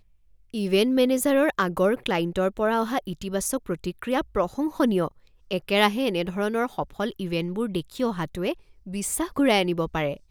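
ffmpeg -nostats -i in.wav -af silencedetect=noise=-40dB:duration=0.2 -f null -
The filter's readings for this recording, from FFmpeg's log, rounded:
silence_start: 0.00
silence_end: 0.54 | silence_duration: 0.54
silence_start: 5.08
silence_end: 5.51 | silence_duration: 0.43
silence_start: 8.54
silence_end: 8.87 | silence_duration: 0.33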